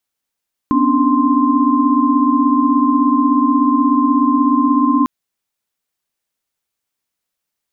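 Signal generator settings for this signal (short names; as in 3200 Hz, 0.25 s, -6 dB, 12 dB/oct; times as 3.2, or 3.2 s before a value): chord B3/C#4/D4/C6 sine, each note -16 dBFS 4.35 s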